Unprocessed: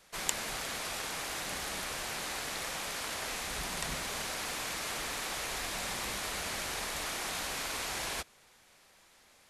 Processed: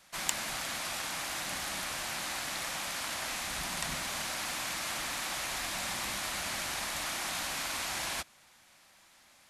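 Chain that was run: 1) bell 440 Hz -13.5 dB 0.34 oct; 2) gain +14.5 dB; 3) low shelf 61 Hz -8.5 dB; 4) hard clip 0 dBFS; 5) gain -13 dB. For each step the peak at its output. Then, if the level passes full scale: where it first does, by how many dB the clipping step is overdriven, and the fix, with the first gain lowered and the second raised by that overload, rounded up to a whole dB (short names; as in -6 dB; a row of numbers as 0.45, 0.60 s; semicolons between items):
-10.0, +4.5, +4.5, 0.0, -13.0 dBFS; step 2, 4.5 dB; step 2 +9.5 dB, step 5 -8 dB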